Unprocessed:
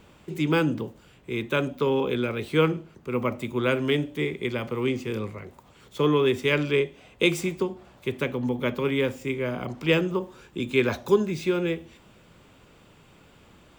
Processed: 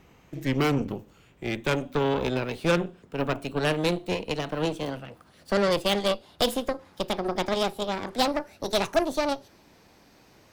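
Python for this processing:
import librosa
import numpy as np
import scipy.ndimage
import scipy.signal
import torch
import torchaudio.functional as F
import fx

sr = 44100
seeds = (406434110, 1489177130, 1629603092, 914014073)

y = fx.speed_glide(x, sr, from_pct=84, to_pct=178)
y = fx.cheby_harmonics(y, sr, harmonics=(8,), levels_db=(-17,), full_scale_db=-8.0)
y = y * 10.0 ** (-2.5 / 20.0)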